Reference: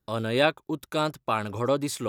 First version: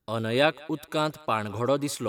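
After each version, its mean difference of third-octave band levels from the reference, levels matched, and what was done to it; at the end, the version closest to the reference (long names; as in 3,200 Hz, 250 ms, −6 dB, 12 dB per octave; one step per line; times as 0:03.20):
1.0 dB: feedback echo with a high-pass in the loop 185 ms, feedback 63%, high-pass 570 Hz, level −23 dB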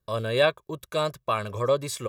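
2.0 dB: comb filter 1.8 ms, depth 65%
level −1.5 dB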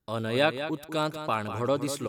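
3.5 dB: repeating echo 193 ms, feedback 15%, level −10 dB
level −2 dB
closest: first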